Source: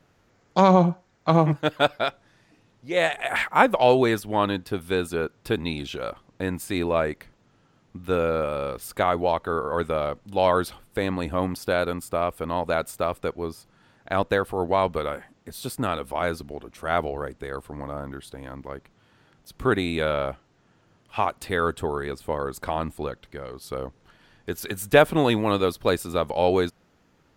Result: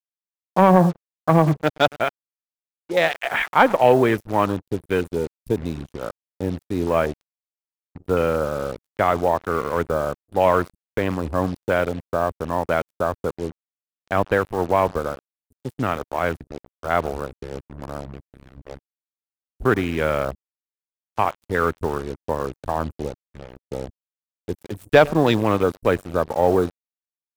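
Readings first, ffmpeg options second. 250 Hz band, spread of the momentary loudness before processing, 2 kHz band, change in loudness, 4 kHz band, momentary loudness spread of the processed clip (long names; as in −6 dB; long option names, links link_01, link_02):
+3.0 dB, 15 LU, +2.0 dB, +3.0 dB, −1.5 dB, 16 LU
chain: -filter_complex "[0:a]aecho=1:1:102:0.112,acrossover=split=130|7800[link_01][link_02][link_03];[link_02]aeval=exprs='sgn(val(0))*max(abs(val(0))-0.0133,0)':channel_layout=same[link_04];[link_01][link_04][link_03]amix=inputs=3:normalize=0,afwtdn=0.0251,acontrast=37,acrusher=bits=5:mix=0:aa=0.5,volume=-1dB"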